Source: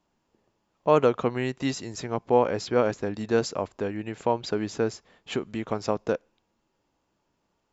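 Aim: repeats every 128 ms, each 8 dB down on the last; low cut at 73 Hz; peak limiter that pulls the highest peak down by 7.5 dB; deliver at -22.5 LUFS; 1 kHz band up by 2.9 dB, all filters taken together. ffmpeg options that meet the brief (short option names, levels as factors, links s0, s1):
-af "highpass=73,equalizer=f=1000:t=o:g=3.5,alimiter=limit=0.251:level=0:latency=1,aecho=1:1:128|256|384|512|640:0.398|0.159|0.0637|0.0255|0.0102,volume=1.88"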